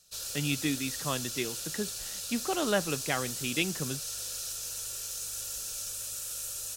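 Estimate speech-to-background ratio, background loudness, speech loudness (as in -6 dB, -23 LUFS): 1.5 dB, -35.0 LUFS, -33.5 LUFS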